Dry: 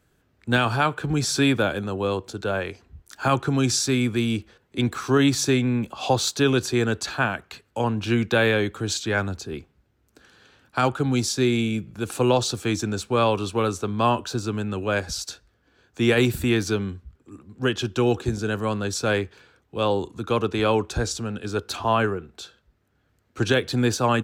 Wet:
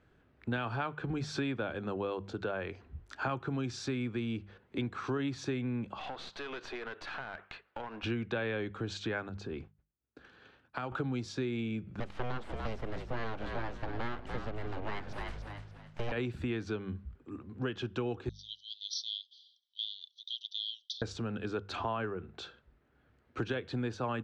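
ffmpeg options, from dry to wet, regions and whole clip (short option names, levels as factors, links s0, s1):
-filter_complex "[0:a]asettb=1/sr,asplit=3[s0][s1][s2];[s0]atrim=end=5.994[s3];[s1]atrim=start=5.99:end=8.04,asetpts=PTS-STARTPTS,afade=t=in:d=0.004:c=qsin,afade=t=out:st=2.046:d=0.004:c=qsin,highpass=620,lowpass=4200,acompressor=threshold=0.0224:ratio=12:attack=3.2:release=140:knee=1:detection=peak,aeval=exprs='clip(val(0),-1,0.0075)':c=same[s4];[s2]atrim=start=8.036[s5];[s3][s4]acrossfade=d=0.004:c1=hsin:c2=qsin[s6];[s6][s5]acrossfade=d=0.004:c1=qsin:c2=hsin,asettb=1/sr,asplit=3[s7][s8][s9];[s7]atrim=end=9.294[s10];[s8]atrim=start=9.29:end=10.92,asetpts=PTS-STARTPTS,afade=t=in:d=0.004:c=qsin,afade=t=out:st=1.626:d=0.004:c=qsin,agate=range=0.0224:threshold=0.00251:ratio=3:release=100:detection=peak,acompressor=threshold=0.02:ratio=3:attack=3.2:release=140:knee=1:detection=peak[s11];[s9]atrim=start=10.916[s12];[s10][s11]acrossfade=d=0.004:c1=hsin:c2=qsin[s13];[s13][s12]acrossfade=d=0.004:c1=qsin:c2=hsin,asettb=1/sr,asplit=3[s14][s15][s16];[s14]atrim=end=12.004[s17];[s15]atrim=start=12:end=16.12,asetpts=PTS-STARTPTS,afade=t=in:d=0.004:c=qsin,afade=t=out:st=4.116:d=0.004:c=qsin,acrossover=split=4000[s18][s19];[s19]acompressor=threshold=0.00891:ratio=4:attack=1:release=60[s20];[s18][s20]amix=inputs=2:normalize=0,aeval=exprs='abs(val(0))':c=same,asplit=5[s21][s22][s23][s24][s25];[s22]adelay=292,afreqshift=-52,volume=0.316[s26];[s23]adelay=584,afreqshift=-104,volume=0.101[s27];[s24]adelay=876,afreqshift=-156,volume=0.0324[s28];[s25]adelay=1168,afreqshift=-208,volume=0.0104[s29];[s21][s26][s27][s28][s29]amix=inputs=5:normalize=0,atrim=end_sample=181692[s30];[s16]atrim=start=16.116[s31];[s17][s30]acrossfade=d=0.004:c1=hsin:c2=qsin[s32];[s32][s31]acrossfade=d=0.004:c1=qsin:c2=hsin,asettb=1/sr,asplit=3[s33][s34][s35];[s33]atrim=end=18.294[s36];[s34]atrim=start=18.29:end=21.02,asetpts=PTS-STARTPTS,afade=t=in:d=0.004:c=qsin,afade=t=out:st=2.726:d=0.004:c=qsin,asuperpass=centerf=4400:order=20:qfactor=1.5,acontrast=87[s37];[s35]atrim=start=21.016[s38];[s36][s37]acrossfade=d=0.004:c1=hsin:c2=qsin[s39];[s39][s38]acrossfade=d=0.004:c1=qsin:c2=hsin,lowpass=2900,bandreject=f=50:t=h:w=6,bandreject=f=100:t=h:w=6,bandreject=f=150:t=h:w=6,bandreject=f=200:t=h:w=6,acompressor=threshold=0.02:ratio=4"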